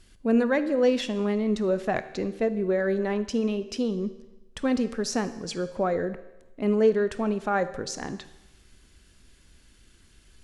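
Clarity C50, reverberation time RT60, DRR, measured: 13.5 dB, 1.0 s, 12.0 dB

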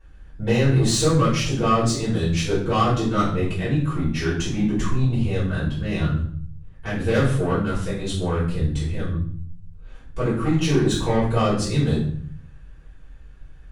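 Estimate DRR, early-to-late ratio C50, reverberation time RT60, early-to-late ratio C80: -11.5 dB, 4.5 dB, 0.55 s, 8.5 dB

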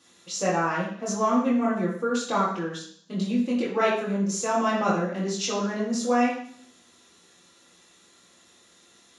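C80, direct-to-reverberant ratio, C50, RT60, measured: 7.5 dB, -6.0 dB, 4.0 dB, 0.60 s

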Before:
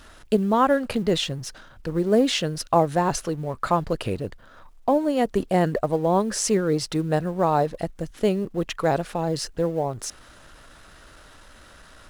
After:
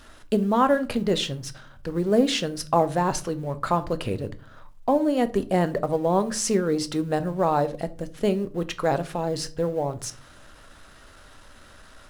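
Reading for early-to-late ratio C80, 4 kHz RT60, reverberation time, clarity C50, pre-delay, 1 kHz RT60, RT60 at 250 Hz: 24.0 dB, 0.25 s, 0.40 s, 19.0 dB, 4 ms, 0.35 s, 0.65 s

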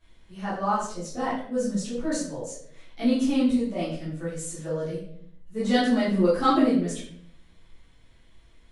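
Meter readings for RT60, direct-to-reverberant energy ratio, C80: 0.65 s, -12.5 dB, 7.0 dB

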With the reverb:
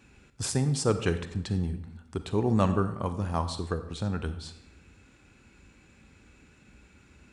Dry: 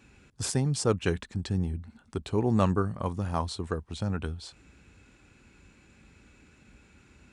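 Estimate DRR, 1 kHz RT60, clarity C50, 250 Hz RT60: 10.0 dB, 0.85 s, 11.5 dB, 0.90 s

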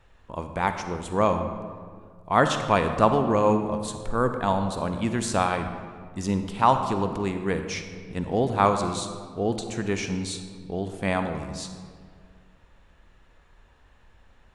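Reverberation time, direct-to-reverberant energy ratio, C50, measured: 1.9 s, 7.0 dB, 7.5 dB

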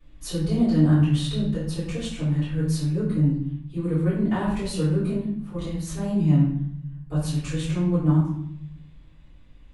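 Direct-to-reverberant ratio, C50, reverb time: -12.0 dB, 2.0 dB, 0.70 s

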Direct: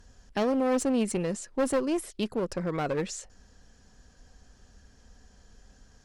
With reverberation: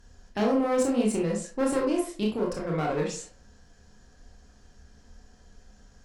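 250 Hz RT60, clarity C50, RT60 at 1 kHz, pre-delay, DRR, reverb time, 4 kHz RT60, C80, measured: 0.45 s, 5.5 dB, 0.40 s, 21 ms, -1.5 dB, 0.40 s, 0.30 s, 11.5 dB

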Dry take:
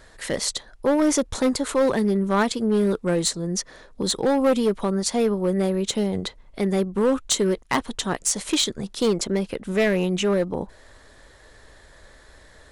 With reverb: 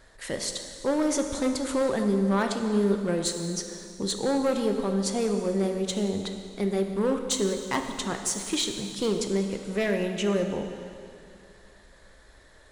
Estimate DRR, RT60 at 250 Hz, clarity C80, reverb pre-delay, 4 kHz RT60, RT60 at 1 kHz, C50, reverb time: 4.5 dB, 2.5 s, 7.0 dB, 5 ms, 2.3 s, 2.5 s, 6.0 dB, 2.5 s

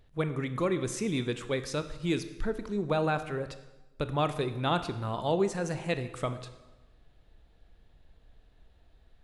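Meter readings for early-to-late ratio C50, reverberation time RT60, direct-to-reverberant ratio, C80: 12.5 dB, 1.1 s, 10.5 dB, 14.0 dB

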